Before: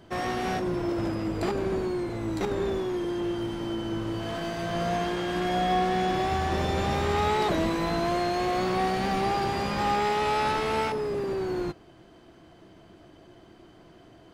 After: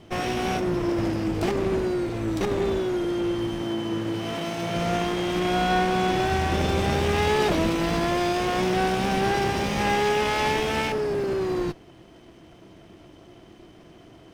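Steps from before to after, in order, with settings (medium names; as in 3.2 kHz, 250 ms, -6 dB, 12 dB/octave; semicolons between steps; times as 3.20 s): comb filter that takes the minimum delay 0.33 ms; 3.62–4.76 s: high-pass 110 Hz; trim +4 dB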